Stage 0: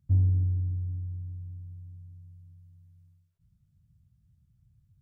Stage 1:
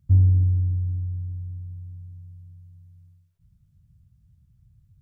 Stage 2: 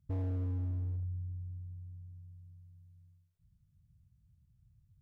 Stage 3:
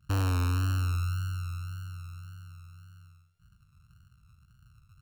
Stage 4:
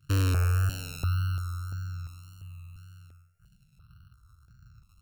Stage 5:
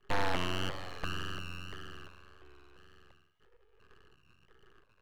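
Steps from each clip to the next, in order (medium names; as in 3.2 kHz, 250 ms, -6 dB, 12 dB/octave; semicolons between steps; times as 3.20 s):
bass shelf 89 Hz +6.5 dB; trim +3.5 dB
hard clipper -24 dBFS, distortion -5 dB; trim -9 dB
sorted samples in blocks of 32 samples; vibrato 1.8 Hz 55 cents; trim +7.5 dB
stepped phaser 2.9 Hz 210–3100 Hz; trim +4.5 dB
mistuned SSB +59 Hz 170–2200 Hz; full-wave rectifier; trim +7 dB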